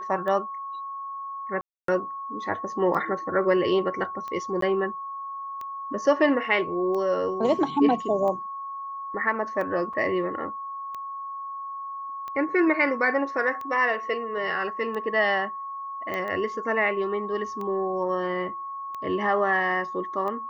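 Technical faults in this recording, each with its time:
tick 45 rpm -23 dBFS
tone 1100 Hz -32 dBFS
1.61–1.88 gap 0.273 s
4.61–4.62 gap 13 ms
9.93–9.94 gap 5.5 ms
16.14 pop -18 dBFS

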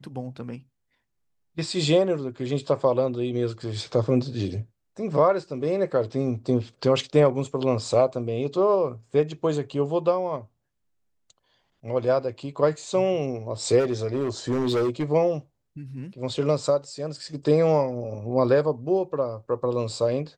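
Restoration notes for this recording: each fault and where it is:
13.79–15.04 clipped -20 dBFS

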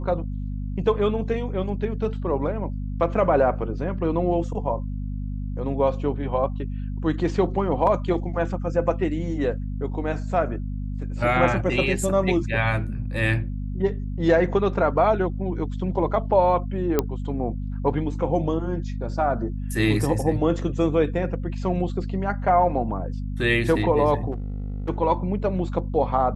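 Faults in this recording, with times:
hum 50 Hz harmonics 5 -29 dBFS
7.87 gap 2.5 ms
16.99 pop -7 dBFS
24.31–24.9 clipped -25 dBFS

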